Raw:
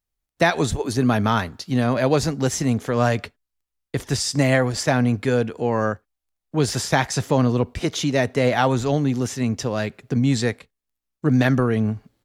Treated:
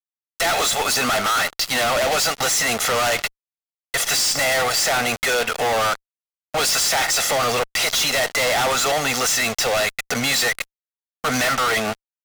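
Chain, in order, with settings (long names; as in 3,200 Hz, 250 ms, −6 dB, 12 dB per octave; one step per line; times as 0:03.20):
high-pass filter 990 Hz 12 dB per octave
comb filter 1.5 ms, depth 80%
in parallel at +1 dB: downward compressor 6 to 1, threshold −31 dBFS, peak gain reduction 15 dB
on the sum: fuzz pedal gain 43 dB, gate −43 dBFS
level −5 dB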